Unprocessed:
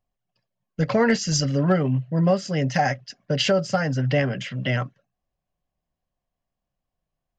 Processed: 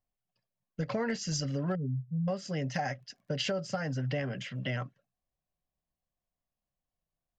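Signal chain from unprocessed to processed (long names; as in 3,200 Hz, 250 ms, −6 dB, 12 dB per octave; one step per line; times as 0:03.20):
0:01.75–0:02.28: expanding power law on the bin magnitudes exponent 3
0:02.98–0:04.59: surface crackle 45 per second −53 dBFS
downward compressor 4 to 1, threshold −21 dBFS, peak gain reduction 6 dB
level −8 dB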